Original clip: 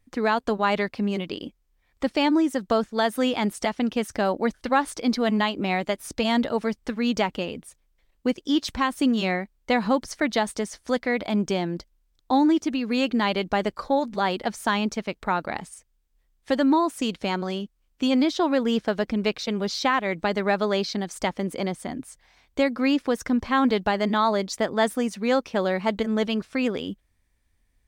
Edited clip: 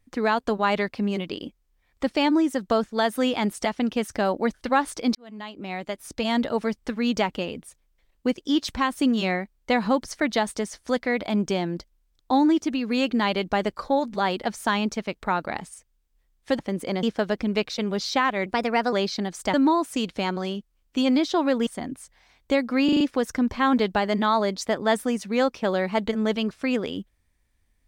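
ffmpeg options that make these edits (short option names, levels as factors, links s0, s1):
-filter_complex "[0:a]asplit=12[s0][s1][s2][s3][s4][s5][s6][s7][s8][s9][s10][s11];[s0]atrim=end=5.15,asetpts=PTS-STARTPTS,afade=t=out:st=5.146:d=0.004:c=hsin[s12];[s1]atrim=start=5.15:end=16.592,asetpts=PTS-STARTPTS,afade=t=in:d=1.39[s13];[s2]atrim=start=21.298:end=21.742[s14];[s3]atrim=start=18.718:end=20.154[s15];[s4]atrim=start=20.15:end=20.69,asetpts=PTS-STARTPTS,asetrate=51156,aresample=44100,atrim=end_sample=20529,asetpts=PTS-STARTPTS[s16];[s5]atrim=start=20.686:end=21.302[s17];[s6]atrim=start=16.588:end=18.722[s18];[s7]atrim=start=21.738:end=22.962[s19];[s8]atrim=start=22.918:end=22.962[s20];[s9]atrim=start=22.918:end=22.962[s21];[s10]atrim=start=22.918:end=22.962[s22];[s11]atrim=start=22.918[s23];[s12][s13]concat=n=2:v=0:a=1[s24];[s24][s14]acrossfade=d=0.004:c1=hsin:c2=hsin[s25];[s25][s15]acrossfade=d=0.004:c1=hsin:c2=hsin[s26];[s26][s16]acrossfade=d=0.004:c1=hsin:c2=hsin[s27];[s27][s17]acrossfade=d=0.004:c1=hsin:c2=hsin[s28];[s28][s18]acrossfade=d=0.004:c1=hsin:c2=hsin[s29];[s29][s19]acrossfade=d=0.004:c1=hsin:c2=hsin[s30];[s30][s20]acrossfade=d=0.004:c1=hsin:c2=hsin[s31];[s31][s21]acrossfade=d=0.004:c1=hsin:c2=hsin[s32];[s32][s22]acrossfade=d=0.004:c1=hsin:c2=hsin[s33];[s33][s23]acrossfade=d=0.004:c1=hsin:c2=hsin"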